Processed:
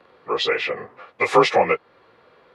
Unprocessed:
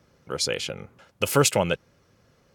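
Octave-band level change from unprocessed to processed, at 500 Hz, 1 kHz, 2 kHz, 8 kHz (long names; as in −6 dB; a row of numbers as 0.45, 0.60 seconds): +5.5, +10.0, +7.5, −14.5 decibels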